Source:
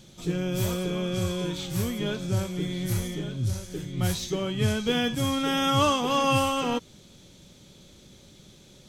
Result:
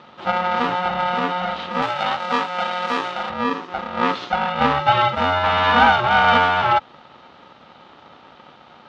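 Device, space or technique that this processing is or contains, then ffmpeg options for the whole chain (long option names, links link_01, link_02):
ring modulator pedal into a guitar cabinet: -filter_complex "[0:a]aeval=exprs='val(0)*sgn(sin(2*PI*360*n/s))':channel_layout=same,highpass=91,equalizer=frequency=110:width_type=q:width=4:gain=-4,equalizer=frequency=180:width_type=q:width=4:gain=-6,equalizer=frequency=480:width_type=q:width=4:gain=-5,equalizer=frequency=840:width_type=q:width=4:gain=9,equalizer=frequency=1300:width_type=q:width=4:gain=10,lowpass=frequency=3600:width=0.5412,lowpass=frequency=3600:width=1.3066,asettb=1/sr,asplit=3[link_01][link_02][link_03];[link_01]atrim=end=1.824[link_04];[link_02]atrim=start=1.82:end=3.3,asetpts=PTS-STARTPTS,afade=type=in:duration=0.004:curve=qsin,afade=type=out:start_time=1.476:duration=0.004:curve=qsin,aemphasis=mode=production:type=bsi[link_05];[link_03]atrim=start=3.296[link_06];[link_04][link_05]acrossfade=duration=0.004:curve1=hsin:curve2=qsin[link_07];[link_07][link_06]acrossfade=duration=0.004:curve1=qsin:curve2=hsin,volume=5dB"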